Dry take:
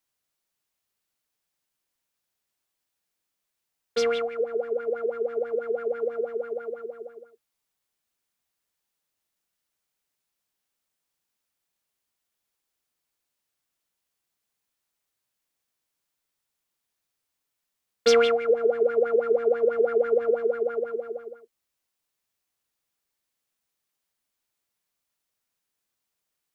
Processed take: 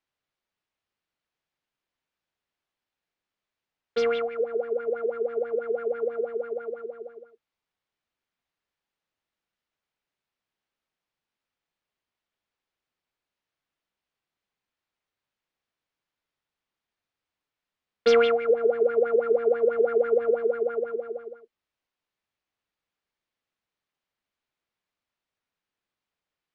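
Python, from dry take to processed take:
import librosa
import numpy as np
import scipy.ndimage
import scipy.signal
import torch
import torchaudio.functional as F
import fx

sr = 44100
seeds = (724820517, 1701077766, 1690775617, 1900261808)

y = scipy.signal.sosfilt(scipy.signal.butter(2, 3400.0, 'lowpass', fs=sr, output='sos'), x)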